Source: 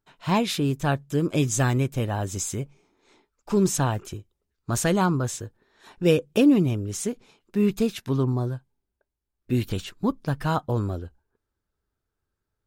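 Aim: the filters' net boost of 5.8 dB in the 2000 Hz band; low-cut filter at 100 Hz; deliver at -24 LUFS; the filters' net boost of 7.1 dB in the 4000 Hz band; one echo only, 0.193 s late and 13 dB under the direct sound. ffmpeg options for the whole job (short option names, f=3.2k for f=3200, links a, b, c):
-af "highpass=100,equalizer=f=2k:t=o:g=6,equalizer=f=4k:t=o:g=7,aecho=1:1:193:0.224"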